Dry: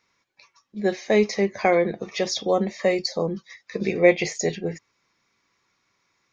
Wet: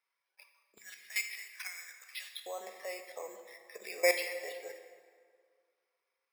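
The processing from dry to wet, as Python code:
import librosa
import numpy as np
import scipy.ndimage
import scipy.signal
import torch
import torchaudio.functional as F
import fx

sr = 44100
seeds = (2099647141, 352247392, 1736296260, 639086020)

y = fx.high_shelf(x, sr, hz=3900.0, db=11.0)
y = fx.level_steps(y, sr, step_db=16)
y = np.repeat(scipy.signal.resample_poly(y, 1, 6), 6)[:len(y)]
y = fx.highpass(y, sr, hz=fx.steps((0.0, 460.0), (0.78, 1500.0), (2.46, 550.0)), slope=24)
y = fx.rev_plate(y, sr, seeds[0], rt60_s=2.0, hf_ratio=0.65, predelay_ms=0, drr_db=6.0)
y = F.gain(torch.from_numpy(y), -4.5).numpy()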